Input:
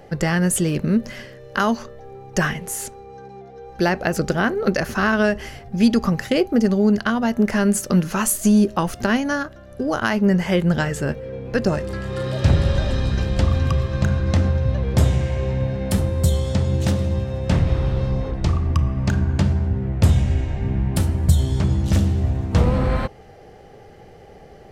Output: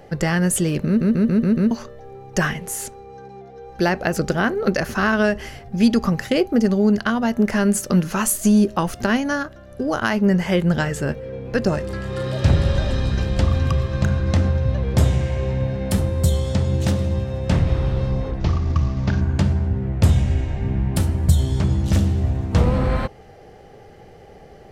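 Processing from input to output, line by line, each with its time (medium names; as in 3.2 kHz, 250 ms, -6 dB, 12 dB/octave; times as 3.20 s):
0.87 s: stutter in place 0.14 s, 6 plays
18.40–19.21 s: CVSD coder 32 kbps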